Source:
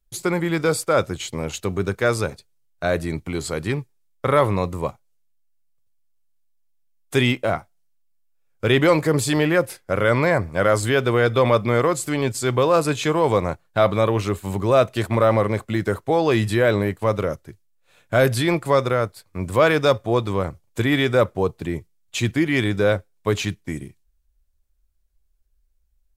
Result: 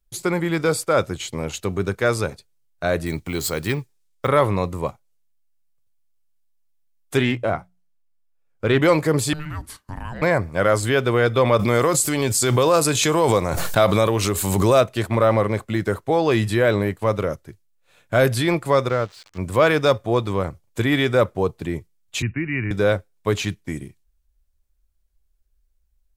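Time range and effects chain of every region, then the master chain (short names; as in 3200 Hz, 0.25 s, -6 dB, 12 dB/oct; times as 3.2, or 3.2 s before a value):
3.06–4.27 high shelf 2800 Hz +7.5 dB + careless resampling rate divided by 2×, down filtered, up hold
7.17–8.82 high shelf 3000 Hz -7.5 dB + notches 60/120/180 Hz + Doppler distortion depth 0.11 ms
9.33–10.22 steep high-pass 170 Hz + compressor 2.5:1, threshold -33 dBFS + frequency shift -460 Hz
11.59–14.81 tone controls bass -1 dB, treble +9 dB + backwards sustainer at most 30 dB/s
18.89–19.38 switching spikes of -18 dBFS + air absorption 170 m + upward expander, over -32 dBFS
22.22–22.71 brick-wall FIR low-pass 2900 Hz + bell 590 Hz -14 dB 2 oct + three-band squash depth 40%
whole clip: dry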